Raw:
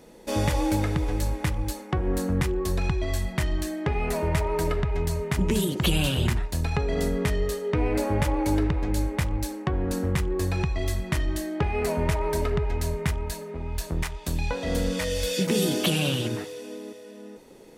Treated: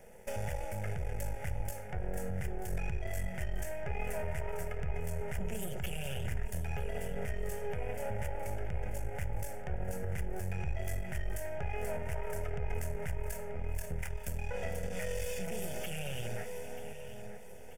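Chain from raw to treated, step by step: partial rectifier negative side -12 dB; in parallel at -3 dB: compression, threshold -35 dBFS, peak gain reduction 15 dB; on the sum: peak limiter -21 dBFS, peak gain reduction 11.5 dB; static phaser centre 1.1 kHz, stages 6; feedback delay 936 ms, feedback 47%, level -13 dB; on a send at -18 dB: reverberation RT60 0.40 s, pre-delay 4 ms; on the sum: trim -3 dB

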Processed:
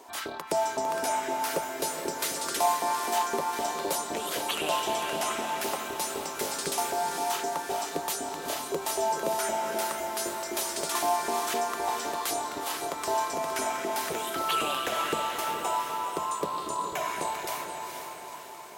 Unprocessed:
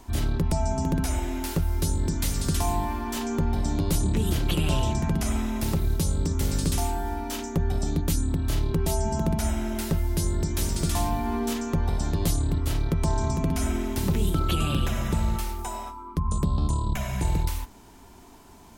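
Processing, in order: LFO high-pass saw up 3.9 Hz 420–1700 Hz; echo that smears into a reverb 463 ms, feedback 55%, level -5 dB

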